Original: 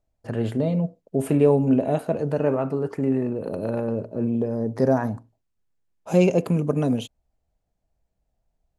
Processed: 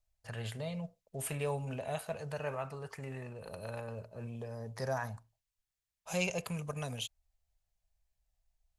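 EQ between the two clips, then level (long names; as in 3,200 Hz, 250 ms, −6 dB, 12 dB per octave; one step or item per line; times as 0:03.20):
guitar amp tone stack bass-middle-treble 10-0-10
notch filter 1,400 Hz, Q 25
+1.0 dB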